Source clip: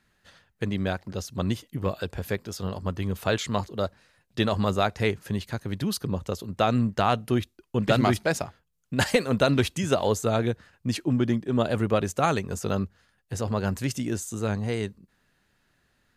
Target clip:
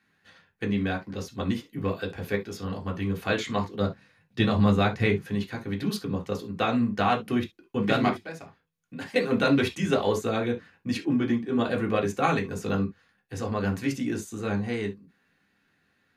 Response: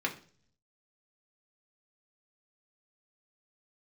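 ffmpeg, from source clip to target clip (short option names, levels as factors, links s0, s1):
-filter_complex "[0:a]asettb=1/sr,asplit=3[s0][s1][s2];[s0]atrim=end=3.794[s3];[s1]atrim=start=3.79:end=5.24,asetpts=PTS-STARTPTS,afade=t=in:d=0.004:c=qsin,afade=t=out:st=1.446:d=0.004:c=qsin,equalizer=f=130:t=o:w=1.1:g=10.5[s4];[s2]atrim=start=5.236[s5];[s3][s4]acrossfade=d=0.004:c1=hsin:c2=qsin[s6];[s6][s5]acrossfade=d=0.004:c1=qsin:c2=hsin,asettb=1/sr,asplit=3[s7][s8][s9];[s7]atrim=end=8.094[s10];[s8]atrim=start=8.09:end=9.16,asetpts=PTS-STARTPTS,afade=t=in:d=0.004:c=qsin,afade=t=out:st=1.066:d=0.004:c=qsin,acompressor=threshold=0.0112:ratio=3[s11];[s9]atrim=start=9.156[s12];[s10][s11]acrossfade=d=0.004:c1=hsin:c2=qsin[s13];[s13][s12]acrossfade=d=0.004:c1=qsin:c2=hsin[s14];[1:a]atrim=start_sample=2205,atrim=end_sample=3528[s15];[s14][s15]afir=irnorm=-1:irlink=0,volume=0.531"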